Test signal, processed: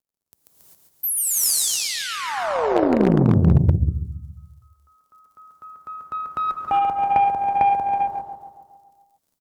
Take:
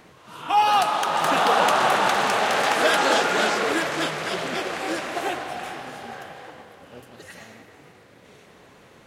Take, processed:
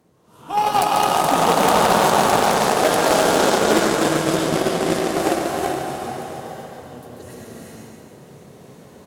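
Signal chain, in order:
high-pass filter 55 Hz 24 dB per octave
repeating echo 139 ms, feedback 56%, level −5.5 dB
surface crackle 57 per second −54 dBFS
parametric band 2,200 Hz −15 dB 2.6 octaves
reverb whose tail is shaped and stops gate 420 ms rising, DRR −1 dB
automatic gain control gain up to 12 dB
wave folding −6.5 dBFS
harmonic generator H 3 −16 dB, 6 −41 dB, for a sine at −6.5 dBFS

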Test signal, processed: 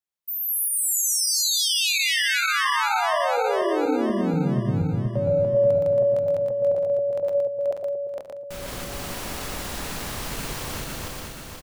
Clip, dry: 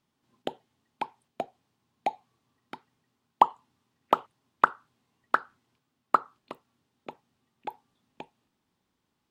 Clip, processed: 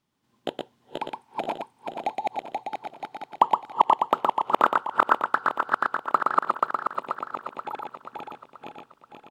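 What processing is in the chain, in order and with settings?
feedback delay that plays each chunk backwards 241 ms, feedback 71%, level 0 dB
single-tap delay 118 ms −3.5 dB

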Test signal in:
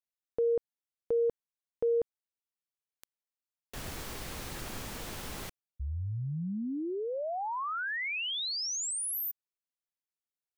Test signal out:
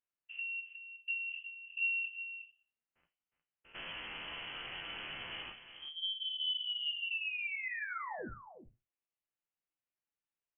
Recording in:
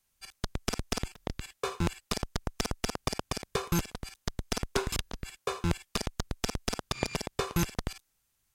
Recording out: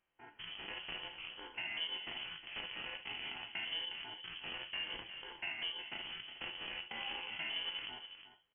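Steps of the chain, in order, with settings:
spectrum averaged block by block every 100 ms
high-pass filter 130 Hz 12 dB per octave
mains-hum notches 60/120/180/240/300/360/420/480 Hz
dynamic equaliser 250 Hz, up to +6 dB, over −48 dBFS, Q 0.89
brickwall limiter −27.5 dBFS
downward compressor, threshold −39 dBFS
flanger 0.36 Hz, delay 9 ms, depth 2.8 ms, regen +52%
slap from a distant wall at 62 metres, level −10 dB
rectangular room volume 160 cubic metres, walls furnished, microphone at 0.74 metres
voice inversion scrambler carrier 3,200 Hz
level +4.5 dB

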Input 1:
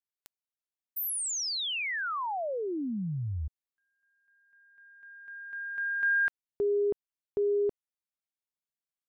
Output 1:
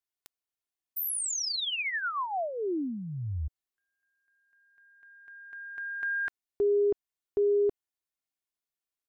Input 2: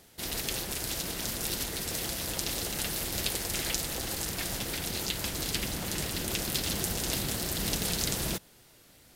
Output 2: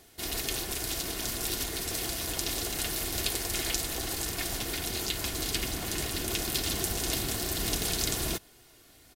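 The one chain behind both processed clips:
comb filter 2.8 ms, depth 43%

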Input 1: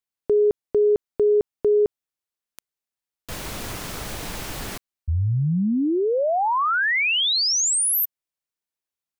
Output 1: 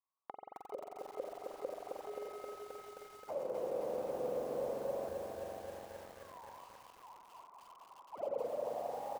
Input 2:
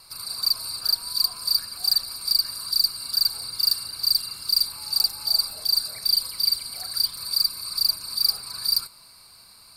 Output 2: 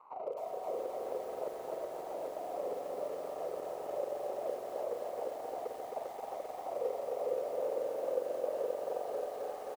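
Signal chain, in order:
noise gate −36 dBFS, range −10 dB
parametric band 140 Hz +5.5 dB 0.81 octaves
on a send: repeating echo 425 ms, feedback 28%, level −13.5 dB
on the sum: decimation without filtering 26×
mid-hump overdrive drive 6 dB, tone 1,300 Hz, clips at −8.5 dBFS
gate with flip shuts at −21 dBFS, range −41 dB
spring reverb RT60 2.1 s, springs 44 ms, chirp 35 ms, DRR 0.5 dB
downward compressor 2 to 1, threshold −49 dBFS
envelope filter 510–1,100 Hz, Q 9, down, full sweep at −39.5 dBFS
feedback echo at a low word length 264 ms, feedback 80%, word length 12 bits, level −4 dB
level +15 dB

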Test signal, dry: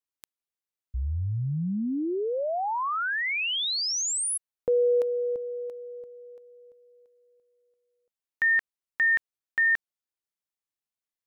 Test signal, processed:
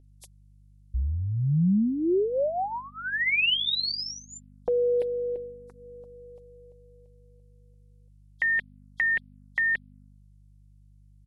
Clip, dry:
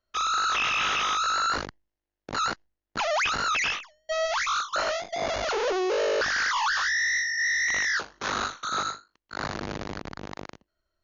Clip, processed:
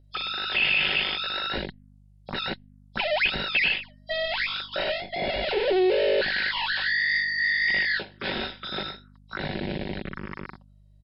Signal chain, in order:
hearing-aid frequency compression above 3,200 Hz 1.5 to 1
comb filter 5.3 ms, depth 43%
hum with harmonics 50 Hz, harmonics 5, −57 dBFS −2 dB per octave
phaser swept by the level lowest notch 200 Hz, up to 1,200 Hz, full sweep at −30.5 dBFS
level +4.5 dB

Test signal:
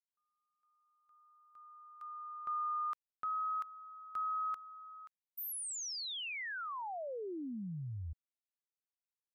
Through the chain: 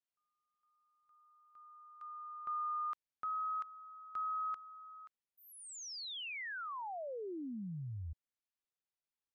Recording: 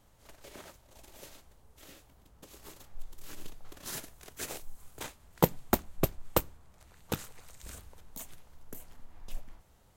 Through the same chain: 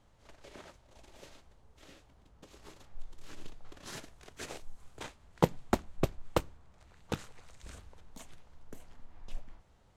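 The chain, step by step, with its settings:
high-frequency loss of the air 71 metres
level −1 dB

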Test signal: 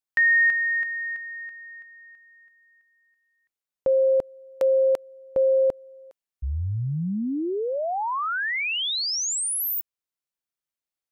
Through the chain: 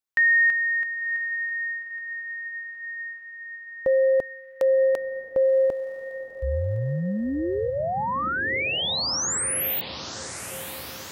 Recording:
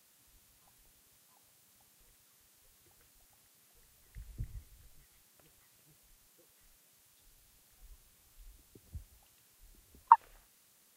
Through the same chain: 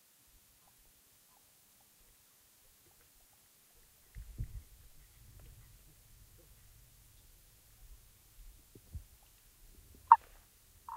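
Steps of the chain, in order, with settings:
feedback delay with all-pass diffusion 1,042 ms, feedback 67%, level −11.5 dB

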